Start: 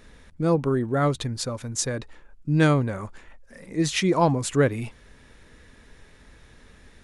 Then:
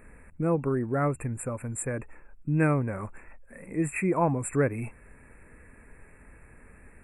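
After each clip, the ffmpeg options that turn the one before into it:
-filter_complex "[0:a]asplit=2[a][b];[b]acompressor=threshold=-29dB:ratio=6,volume=-0.5dB[c];[a][c]amix=inputs=2:normalize=0,afftfilt=real='re*(1-between(b*sr/4096,2700,7200))':imag='im*(1-between(b*sr/4096,2700,7200))':win_size=4096:overlap=0.75,volume=-6.5dB"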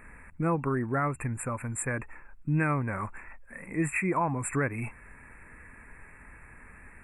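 -af "equalizer=f=500:t=o:w=1:g=-5,equalizer=f=1k:t=o:w=1:g=6,equalizer=f=2k:t=o:w=1:g=6,alimiter=limit=-18.5dB:level=0:latency=1:release=212"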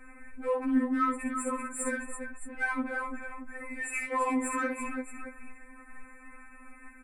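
-filter_complex "[0:a]aecho=1:1:57|337|622:0.562|0.376|0.2,asplit=2[a][b];[b]asoftclip=type=tanh:threshold=-29dB,volume=-6.5dB[c];[a][c]amix=inputs=2:normalize=0,afftfilt=real='re*3.46*eq(mod(b,12),0)':imag='im*3.46*eq(mod(b,12),0)':win_size=2048:overlap=0.75,volume=-2dB"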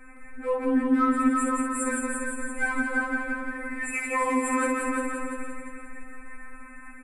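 -filter_complex "[0:a]asplit=2[a][b];[b]aecho=0:1:348|696|1044|1392:0.562|0.197|0.0689|0.0241[c];[a][c]amix=inputs=2:normalize=0,aresample=32000,aresample=44100,asplit=2[d][e];[e]aecho=0:1:168:0.668[f];[d][f]amix=inputs=2:normalize=0,volume=2.5dB"

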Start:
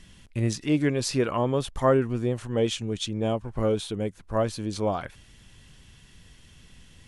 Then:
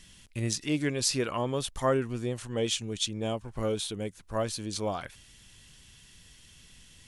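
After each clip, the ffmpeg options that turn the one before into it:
-af "highshelf=f=2.5k:g=11,volume=-6dB"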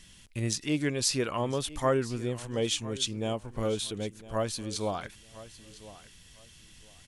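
-af "aecho=1:1:1006|2012:0.133|0.0293"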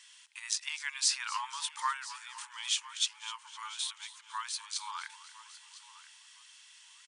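-filter_complex "[0:a]asplit=7[a][b][c][d][e][f][g];[b]adelay=255,afreqshift=-70,volume=-16.5dB[h];[c]adelay=510,afreqshift=-140,volume=-21.1dB[i];[d]adelay=765,afreqshift=-210,volume=-25.7dB[j];[e]adelay=1020,afreqshift=-280,volume=-30.2dB[k];[f]adelay=1275,afreqshift=-350,volume=-34.8dB[l];[g]adelay=1530,afreqshift=-420,volume=-39.4dB[m];[a][h][i][j][k][l][m]amix=inputs=7:normalize=0,afftfilt=real='re*between(b*sr/4096,850,10000)':imag='im*between(b*sr/4096,850,10000)':win_size=4096:overlap=0.75"

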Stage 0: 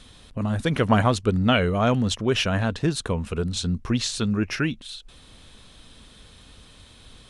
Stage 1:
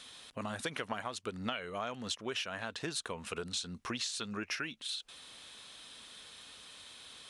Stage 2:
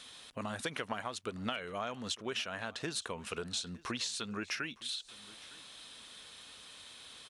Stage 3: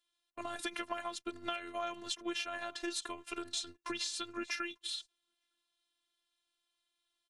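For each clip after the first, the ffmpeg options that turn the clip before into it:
-af "highpass=f=1.1k:p=1,acompressor=threshold=-35dB:ratio=12,volume=1dB"
-af "aecho=1:1:910:0.0841"
-af "afftfilt=real='hypot(re,im)*cos(PI*b)':imag='0':win_size=512:overlap=0.75,agate=range=-31dB:threshold=-48dB:ratio=16:detection=peak,volume=2.5dB"

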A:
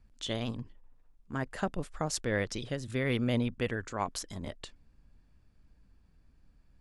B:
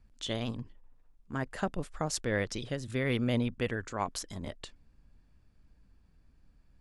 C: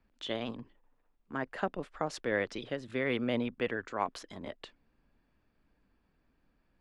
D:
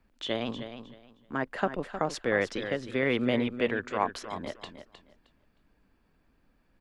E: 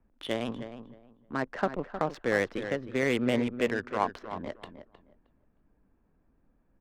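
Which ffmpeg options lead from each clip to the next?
-af anull
-filter_complex "[0:a]acrossover=split=220 3900:gain=0.2 1 0.141[a][b][c];[a][b][c]amix=inputs=3:normalize=0,volume=1dB"
-af "aecho=1:1:311|622|933:0.299|0.0657|0.0144,volume=4.5dB"
-af "adynamicsmooth=sensitivity=4.5:basefreq=1.3k"

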